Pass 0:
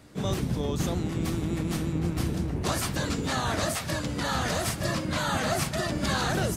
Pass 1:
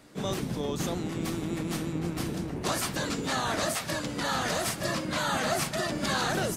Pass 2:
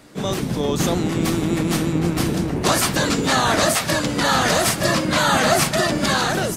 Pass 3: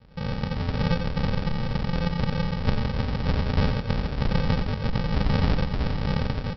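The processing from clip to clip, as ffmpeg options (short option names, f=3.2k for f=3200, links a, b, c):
-af "equalizer=f=69:w=0.79:g=-12.5"
-af "dynaudnorm=f=110:g=11:m=4dB,volume=7.5dB"
-af "aresample=11025,acrusher=samples=32:mix=1:aa=0.000001,aresample=44100,aecho=1:1:89:0.376,volume=-5dB"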